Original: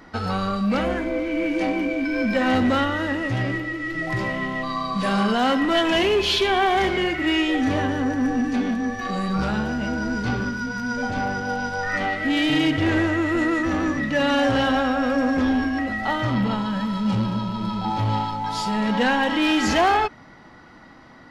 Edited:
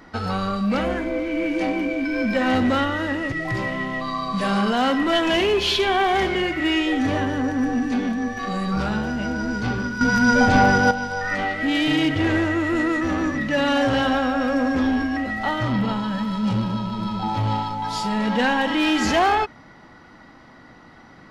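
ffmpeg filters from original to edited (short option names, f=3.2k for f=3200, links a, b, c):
-filter_complex "[0:a]asplit=4[a][b][c][d];[a]atrim=end=3.322[e];[b]atrim=start=3.938:end=10.632[f];[c]atrim=start=10.628:end=11.532,asetpts=PTS-STARTPTS,volume=10dB[g];[d]atrim=start=11.528[h];[e][f]acrossfade=d=0.004:c1=hsin:c2=hsin[i];[i][g]acrossfade=d=0.004:c1=hsin:c2=hsin[j];[j][h]acrossfade=d=0.004:c1=hsin:c2=hsin"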